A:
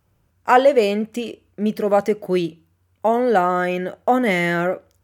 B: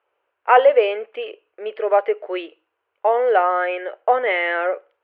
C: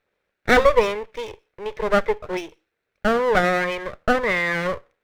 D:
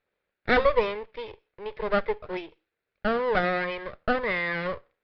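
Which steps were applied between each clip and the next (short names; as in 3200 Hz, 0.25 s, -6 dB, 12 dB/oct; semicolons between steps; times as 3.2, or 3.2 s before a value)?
elliptic band-pass 440–2900 Hz, stop band 40 dB; gain +1.5 dB
minimum comb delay 0.5 ms
downsampling 11025 Hz; gain -6 dB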